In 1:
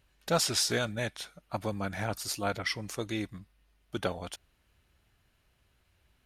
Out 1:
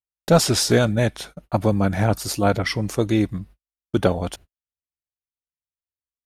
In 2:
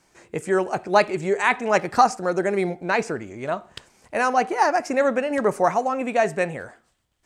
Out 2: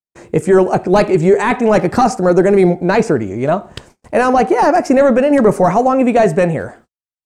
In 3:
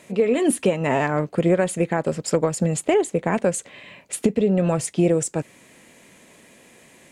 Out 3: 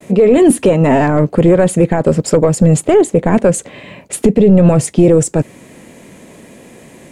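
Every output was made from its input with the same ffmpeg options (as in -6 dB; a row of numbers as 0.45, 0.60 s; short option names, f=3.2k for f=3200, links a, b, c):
-af "apsyclip=17.5dB,tiltshelf=f=970:g=6.5,agate=range=-55dB:threshold=-34dB:ratio=16:detection=peak,highshelf=f=4.8k:g=4.5,volume=-7.5dB"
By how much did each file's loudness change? +11.5, +9.5, +10.5 LU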